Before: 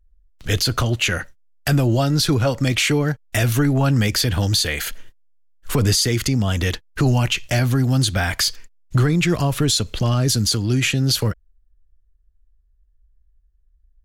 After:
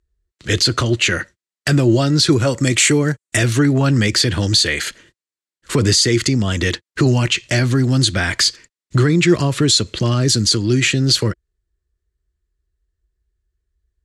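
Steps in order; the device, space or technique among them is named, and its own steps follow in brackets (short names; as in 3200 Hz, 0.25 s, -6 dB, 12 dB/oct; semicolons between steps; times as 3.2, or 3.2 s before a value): car door speaker (speaker cabinet 90–9400 Hz, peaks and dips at 350 Hz +7 dB, 770 Hz -7 dB, 1900 Hz +4 dB, 4200 Hz +4 dB, 7600 Hz +4 dB); 2.3–3.37 resonant high shelf 6100 Hz +6.5 dB, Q 1.5; gain +2.5 dB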